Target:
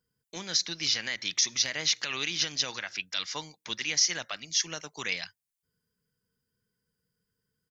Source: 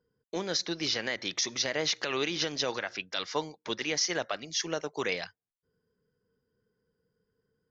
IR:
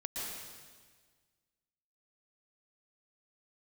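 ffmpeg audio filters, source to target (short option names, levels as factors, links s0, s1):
-af "firequalizer=gain_entry='entry(160,0);entry(410,-10);entry(910,-3);entry(2300,5);entry(3700,5);entry(8800,12)':delay=0.05:min_phase=1,volume=0.75"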